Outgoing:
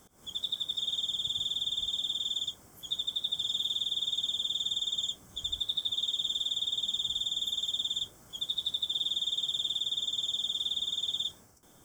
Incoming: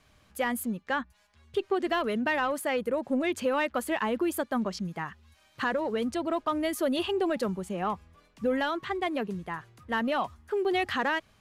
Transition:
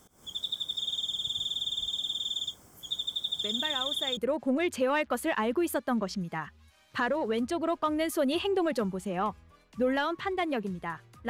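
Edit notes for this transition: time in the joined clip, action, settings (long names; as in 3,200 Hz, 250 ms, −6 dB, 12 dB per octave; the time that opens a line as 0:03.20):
outgoing
0:03.44: mix in incoming from 0:02.08 0.73 s −8.5 dB
0:04.17: continue with incoming from 0:02.81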